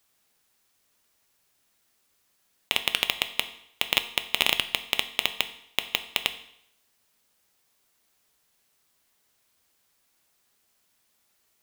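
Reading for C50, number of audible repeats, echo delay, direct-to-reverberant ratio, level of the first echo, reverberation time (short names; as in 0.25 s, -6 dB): 13.5 dB, none, none, 8.5 dB, none, 0.70 s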